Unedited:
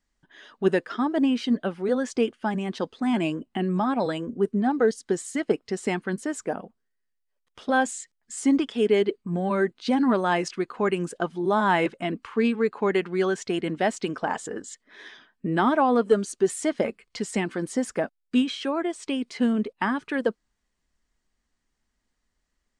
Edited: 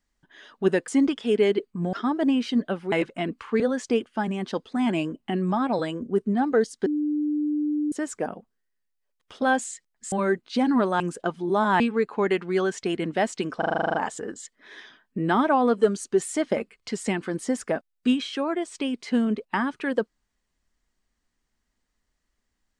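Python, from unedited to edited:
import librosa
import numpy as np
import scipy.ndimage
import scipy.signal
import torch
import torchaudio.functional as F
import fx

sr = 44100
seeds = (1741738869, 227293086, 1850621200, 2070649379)

y = fx.edit(x, sr, fx.bleep(start_s=5.13, length_s=1.06, hz=298.0, db=-22.0),
    fx.move(start_s=8.39, length_s=1.05, to_s=0.88),
    fx.cut(start_s=10.32, length_s=0.64),
    fx.move(start_s=11.76, length_s=0.68, to_s=1.87),
    fx.stutter(start_s=14.22, slice_s=0.04, count=10), tone=tone)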